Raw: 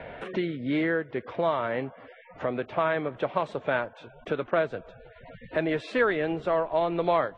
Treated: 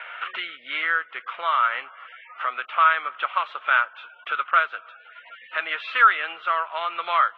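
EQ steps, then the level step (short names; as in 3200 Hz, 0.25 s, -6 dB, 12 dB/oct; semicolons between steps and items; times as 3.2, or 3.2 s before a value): resonant high-pass 1300 Hz, resonance Q 6.4; synth low-pass 3000 Hz, resonance Q 3.4; bell 1700 Hz -3.5 dB 0.29 oct; 0.0 dB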